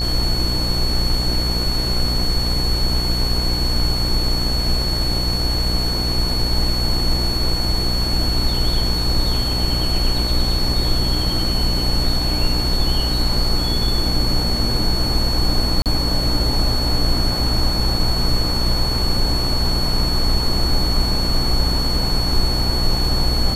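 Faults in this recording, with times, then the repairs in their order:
buzz 60 Hz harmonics 39 -23 dBFS
tone 4400 Hz -22 dBFS
15.82–15.86 gap 38 ms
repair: de-hum 60 Hz, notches 39; notch 4400 Hz, Q 30; interpolate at 15.82, 38 ms

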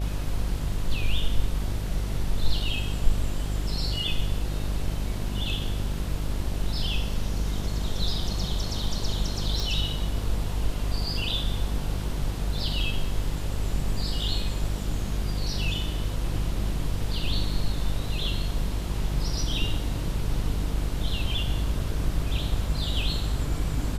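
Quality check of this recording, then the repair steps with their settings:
buzz 50 Hz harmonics 14 -30 dBFS
9.6 pop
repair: de-click; de-hum 50 Hz, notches 14

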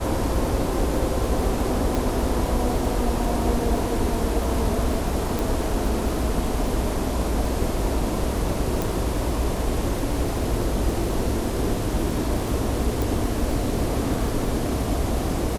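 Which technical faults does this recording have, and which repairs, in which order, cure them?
crackle 47/s -30 dBFS
1.95 pop
5.39 pop
8.82 pop
13.02 pop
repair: de-click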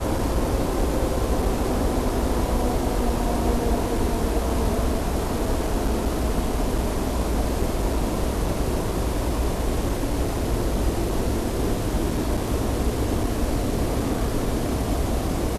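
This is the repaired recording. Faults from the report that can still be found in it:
none

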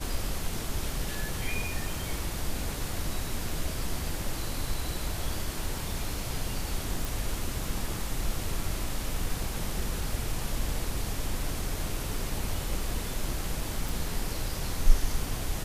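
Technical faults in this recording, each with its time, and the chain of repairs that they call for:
7.05 pop
13.89 pop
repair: de-click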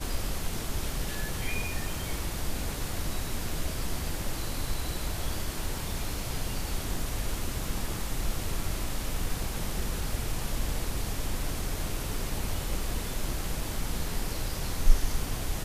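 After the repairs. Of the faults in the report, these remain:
none

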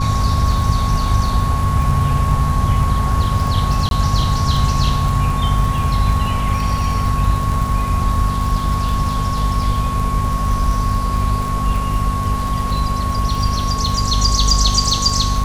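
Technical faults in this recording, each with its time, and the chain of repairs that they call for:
crackle 38/s -22 dBFS
hum 50 Hz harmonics 5 -21 dBFS
tone 1100 Hz -22 dBFS
3.89–3.91 gap 22 ms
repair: de-click; notch 1100 Hz, Q 30; de-hum 50 Hz, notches 5; interpolate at 3.89, 22 ms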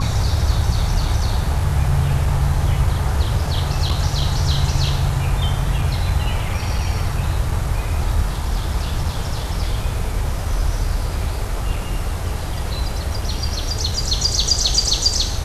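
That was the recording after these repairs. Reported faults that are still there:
none

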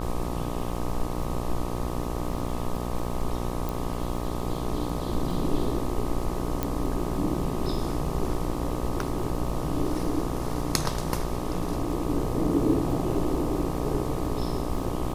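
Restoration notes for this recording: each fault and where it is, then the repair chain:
buzz 60 Hz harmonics 21 -32 dBFS
crackle 37/s -36 dBFS
3.69 pop
6.63 pop -12 dBFS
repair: de-click; de-hum 60 Hz, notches 21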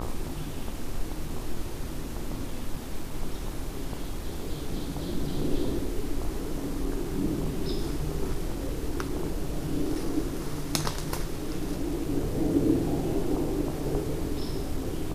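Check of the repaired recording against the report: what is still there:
3.69 pop

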